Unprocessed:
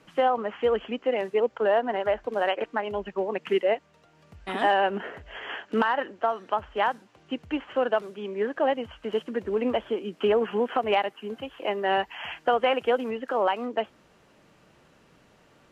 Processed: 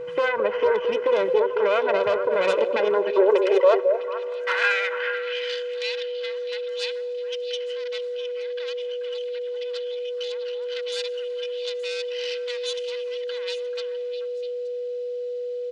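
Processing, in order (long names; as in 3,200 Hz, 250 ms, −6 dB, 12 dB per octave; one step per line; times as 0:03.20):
phase distortion by the signal itself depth 0.38 ms
bass and treble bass −8 dB, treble −13 dB
comb filter 2 ms, depth 75%
in parallel at 0 dB: downward compressor, threshold −32 dBFS, peak gain reduction 15.5 dB
on the sum: brickwall limiter −17 dBFS, peak gain reduction 8.5 dB
high-pass filter sweep 110 Hz → 4,000 Hz, 0:02.06–0:05.57
steady tone 490 Hz −33 dBFS
echo through a band-pass that steps 218 ms, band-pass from 480 Hz, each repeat 1.4 octaves, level −4 dB
on a send at −19 dB: convolution reverb RT60 3.8 s, pre-delay 53 ms
on the sum: downsampling to 22,050 Hz
level +2.5 dB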